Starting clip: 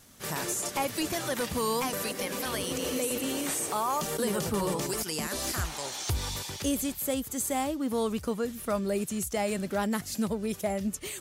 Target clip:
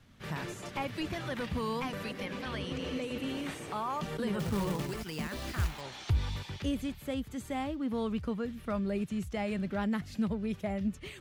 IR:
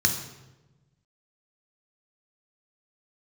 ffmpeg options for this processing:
-filter_complex "[0:a]asettb=1/sr,asplit=3[link_01][link_02][link_03];[link_01]atrim=end=2.264[link_04];[link_02]atrim=start=2.26:end=3.18,asetpts=PTS-STARTPTS,afade=type=in:duration=0.004:curve=qsin,afade=type=out:start_time=0.916:duration=0.004:curve=qsin,acrossover=split=8400[link_05][link_06];[link_06]acompressor=threshold=-48dB:ratio=4:attack=1:release=60[link_07];[link_05][link_07]amix=inputs=2:normalize=0[link_08];[link_03]atrim=start=3.176[link_09];[link_04][link_08]acrossfade=duration=0.004:curve1=hsin:curve2=qsin[link_10];[link_10][link_09]acrossfade=duration=0.004:curve1=qsin:curve2=hsin,bass=frequency=250:gain=11,treble=frequency=4000:gain=-15,acrossover=split=110|4200[link_11][link_12][link_13];[link_12]crystalizer=i=5.5:c=0[link_14];[link_11][link_14][link_13]amix=inputs=3:normalize=0,asettb=1/sr,asplit=3[link_15][link_16][link_17];[link_15]atrim=end=4.394[link_18];[link_16]atrim=start=4.39:end=5.81,asetpts=PTS-STARTPTS,afade=type=in:duration=0.004:curve=qsin,afade=type=out:start_time=1.416:duration=0.004:curve=qsin,acrusher=bits=3:mode=log:mix=0:aa=0.000001[link_19];[link_17]atrim=start=5.806[link_20];[link_18][link_19]acrossfade=duration=0.004:curve1=hsin:curve2=qsin[link_21];[link_21][link_20]acrossfade=duration=0.004:curve1=qsin:curve2=hsin,volume=-8dB"

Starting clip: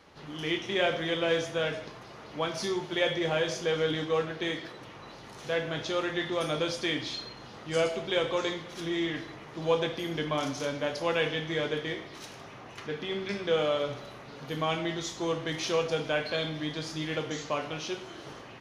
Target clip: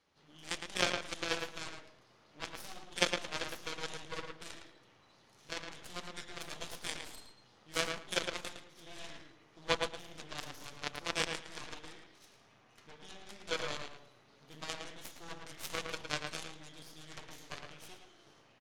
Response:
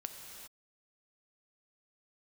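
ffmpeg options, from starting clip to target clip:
-filter_complex "[0:a]equalizer=frequency=7600:width=0.35:gain=7,aeval=exprs='0.266*(cos(1*acos(clip(val(0)/0.266,-1,1)))-cos(1*PI/2))+0.0944*(cos(3*acos(clip(val(0)/0.266,-1,1)))-cos(3*PI/2))+0.00188*(cos(4*acos(clip(val(0)/0.266,-1,1)))-cos(4*PI/2))+0.00376*(cos(8*acos(clip(val(0)/0.266,-1,1)))-cos(8*PI/2))':channel_layout=same,asplit=2[link_01][link_02];[link_02]adelay=111,lowpass=frequency=3500:poles=1,volume=-4.5dB,asplit=2[link_03][link_04];[link_04]adelay=111,lowpass=frequency=3500:poles=1,volume=0.17,asplit=2[link_05][link_06];[link_06]adelay=111,lowpass=frequency=3500:poles=1,volume=0.17[link_07];[link_03][link_05][link_07]amix=inputs=3:normalize=0[link_08];[link_01][link_08]amix=inputs=2:normalize=0,volume=3dB"

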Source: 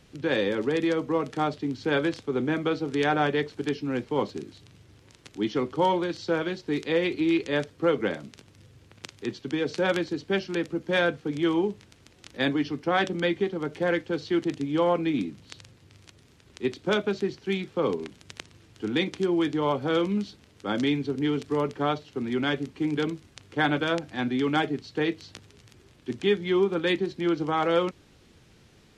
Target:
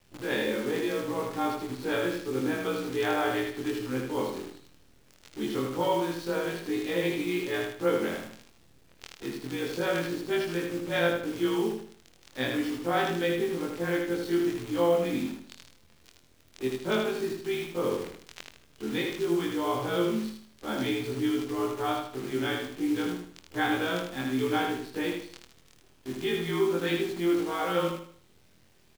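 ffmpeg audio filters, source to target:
ffmpeg -i in.wav -af "afftfilt=real='re':imag='-im':win_size=2048:overlap=0.75,acrusher=bits=8:dc=4:mix=0:aa=0.000001,aecho=1:1:78|156|234|312|390:0.631|0.227|0.0818|0.0294|0.0106" out.wav

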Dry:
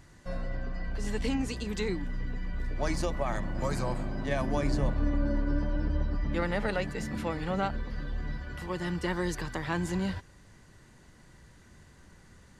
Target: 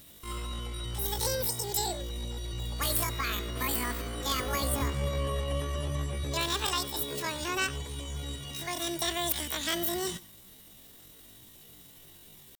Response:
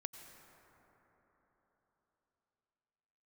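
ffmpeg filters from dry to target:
-filter_complex "[0:a]crystalizer=i=9:c=0,aeval=exprs='(mod(3.76*val(0)+1,2)-1)/3.76':channel_layout=same,asetrate=85689,aresample=44100,atempo=0.514651[link_01];[1:a]atrim=start_sample=2205,atrim=end_sample=4410[link_02];[link_01][link_02]afir=irnorm=-1:irlink=0"

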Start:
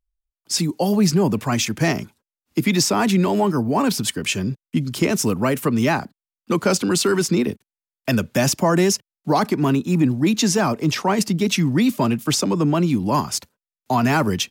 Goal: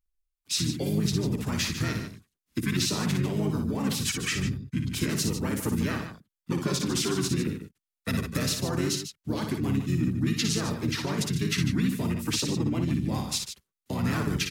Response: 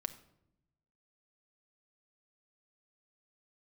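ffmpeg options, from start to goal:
-filter_complex "[0:a]highshelf=frequency=10000:gain=3.5,acompressor=threshold=-22dB:ratio=2.5,equalizer=frequency=820:width=1.8:gain=-14,asplit=3[link_01][link_02][link_03];[link_02]asetrate=22050,aresample=44100,atempo=2,volume=-10dB[link_04];[link_03]asetrate=33038,aresample=44100,atempo=1.33484,volume=0dB[link_05];[link_01][link_04][link_05]amix=inputs=3:normalize=0,aecho=1:1:58.31|148.7:0.501|0.316,volume=-7dB"

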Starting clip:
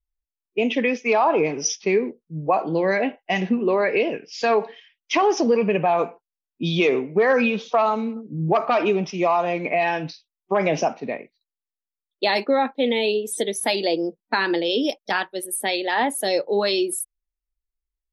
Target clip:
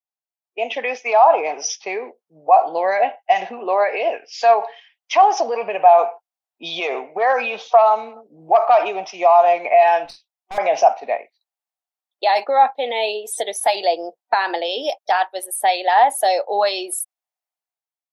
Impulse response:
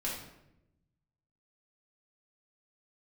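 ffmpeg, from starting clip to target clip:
-filter_complex "[0:a]dynaudnorm=framelen=140:gausssize=9:maxgain=11.5dB,alimiter=limit=-6.5dB:level=0:latency=1:release=64,highpass=frequency=730:width_type=q:width=4.9,asettb=1/sr,asplit=3[link_01][link_02][link_03];[link_01]atrim=end=10.054[link_04];[link_02]atrim=start=10.05:end=10.58,asetpts=PTS-STARTPTS,afade=type=in:duration=0.004:curve=qsin,afade=type=out:start_time=0.526:duration=0.004:curve=qsin,aeval=exprs='(tanh(12.6*val(0)+0.5)-tanh(0.5))/12.6':channel_layout=same[link_05];[link_03]atrim=start=10.576[link_06];[link_04][link_05]acrossfade=duration=0.004:curve1=hsin:curve2=qsin[link_07];[link_07][link_06]acrossfade=duration=0.004:curve1=qsin:curve2=hsin,volume=-6dB"

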